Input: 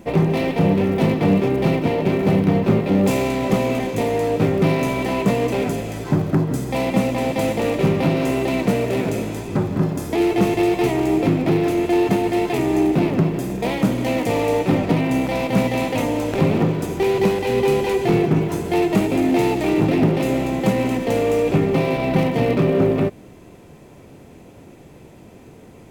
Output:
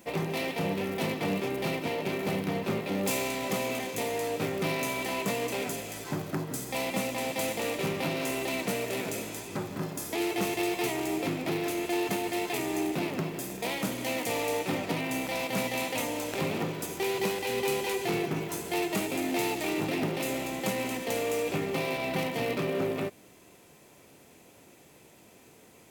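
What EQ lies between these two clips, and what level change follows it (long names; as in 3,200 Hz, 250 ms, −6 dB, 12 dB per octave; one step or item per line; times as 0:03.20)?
spectral tilt +3 dB per octave
−8.5 dB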